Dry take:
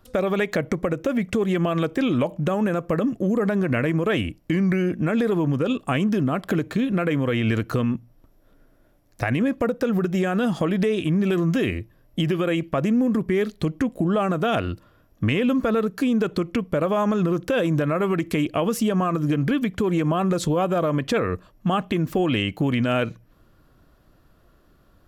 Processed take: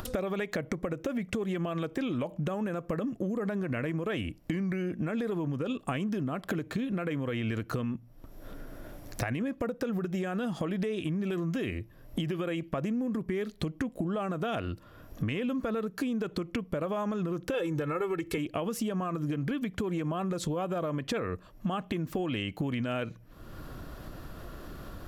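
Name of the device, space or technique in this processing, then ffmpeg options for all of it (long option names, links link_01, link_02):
upward and downward compression: -filter_complex "[0:a]asettb=1/sr,asplit=3[link_01][link_02][link_03];[link_01]atrim=end=17.544[link_04];[link_02]atrim=start=17.54:end=18.38,asetpts=PTS-STARTPTS,afade=type=in:duration=0.004:curve=qsin,afade=type=out:start_time=0.836:duration=0.004:curve=qsin,aecho=1:1:2.3:0.94,atrim=end_sample=37044[link_05];[link_03]atrim=start=18.376[link_06];[link_04][link_05]acrossfade=duration=0.004:curve1=hsin:curve2=qsin[link_07];[link_07][link_06]acrossfade=duration=0.004:curve1=qsin:curve2=hsin,acompressor=mode=upward:threshold=-33dB:ratio=2.5,acompressor=threshold=-33dB:ratio=5,volume=2.5dB"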